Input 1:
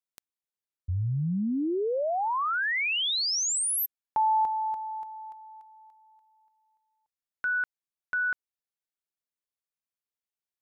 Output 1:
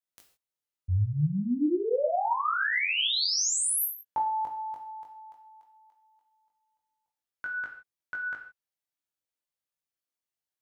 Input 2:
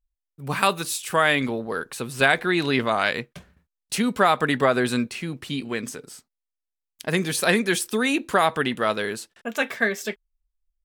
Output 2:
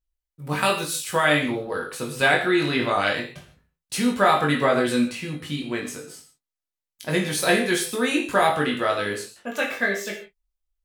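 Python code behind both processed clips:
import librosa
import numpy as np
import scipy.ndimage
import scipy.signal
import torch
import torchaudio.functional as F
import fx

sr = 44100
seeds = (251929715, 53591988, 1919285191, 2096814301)

y = fx.doubler(x, sr, ms=20.0, db=-4)
y = fx.rev_gated(y, sr, seeds[0], gate_ms=180, shape='falling', drr_db=1.5)
y = F.gain(torch.from_numpy(y), -3.5).numpy()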